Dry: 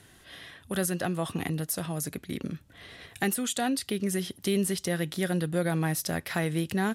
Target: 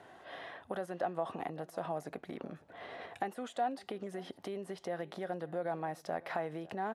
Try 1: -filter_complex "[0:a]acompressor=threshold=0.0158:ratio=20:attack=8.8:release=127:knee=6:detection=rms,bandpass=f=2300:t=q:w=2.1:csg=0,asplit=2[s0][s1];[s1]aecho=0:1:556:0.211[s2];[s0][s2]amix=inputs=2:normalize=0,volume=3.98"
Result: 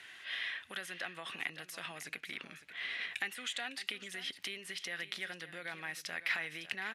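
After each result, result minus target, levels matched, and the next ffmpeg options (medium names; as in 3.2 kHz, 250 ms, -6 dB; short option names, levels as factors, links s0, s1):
1 kHz band -12.0 dB; echo-to-direct +8 dB
-filter_complex "[0:a]acompressor=threshold=0.0158:ratio=20:attack=8.8:release=127:knee=6:detection=rms,bandpass=f=730:t=q:w=2.1:csg=0,asplit=2[s0][s1];[s1]aecho=0:1:556:0.211[s2];[s0][s2]amix=inputs=2:normalize=0,volume=3.98"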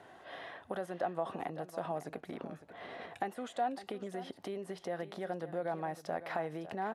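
echo-to-direct +8 dB
-filter_complex "[0:a]acompressor=threshold=0.0158:ratio=20:attack=8.8:release=127:knee=6:detection=rms,bandpass=f=730:t=q:w=2.1:csg=0,asplit=2[s0][s1];[s1]aecho=0:1:556:0.0841[s2];[s0][s2]amix=inputs=2:normalize=0,volume=3.98"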